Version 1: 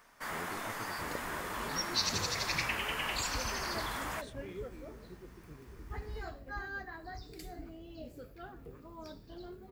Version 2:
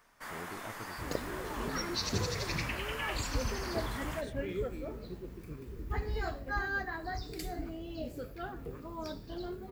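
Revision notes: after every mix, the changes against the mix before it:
first sound −4.0 dB
second sound +7.0 dB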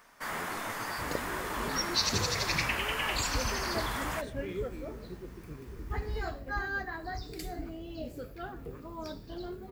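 first sound +7.0 dB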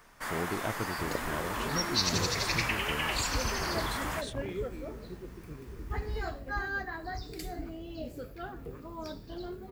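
speech +11.5 dB

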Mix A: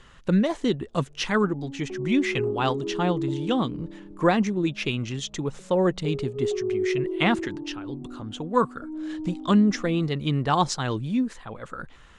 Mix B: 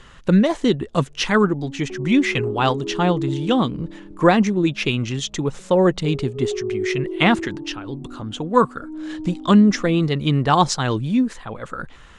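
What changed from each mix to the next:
speech +6.0 dB
reverb: on, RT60 1.0 s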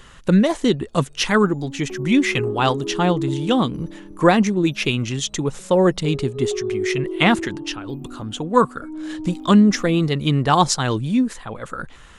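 background: remove Bessel low-pass filter 820 Hz
master: remove high-frequency loss of the air 53 metres

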